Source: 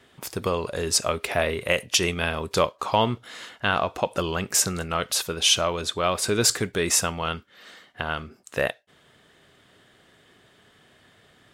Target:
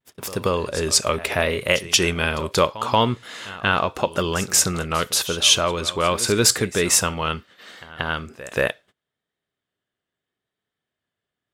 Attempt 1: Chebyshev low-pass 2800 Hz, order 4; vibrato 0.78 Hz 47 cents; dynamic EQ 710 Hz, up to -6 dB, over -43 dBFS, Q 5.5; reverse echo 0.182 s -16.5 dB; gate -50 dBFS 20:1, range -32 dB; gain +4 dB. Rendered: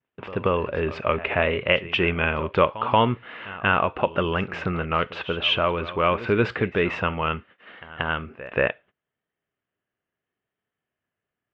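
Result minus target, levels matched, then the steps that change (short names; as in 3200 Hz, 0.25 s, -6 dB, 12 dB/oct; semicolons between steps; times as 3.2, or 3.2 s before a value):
2000 Hz band +3.0 dB
remove: Chebyshev low-pass 2800 Hz, order 4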